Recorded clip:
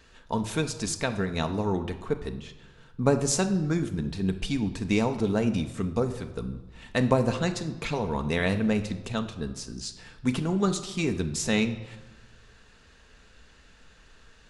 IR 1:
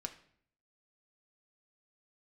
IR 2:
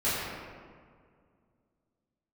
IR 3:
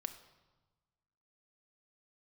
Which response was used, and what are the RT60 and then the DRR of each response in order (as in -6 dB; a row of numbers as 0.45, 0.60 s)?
3; 0.60, 2.0, 1.2 s; 4.5, -14.0, 7.0 dB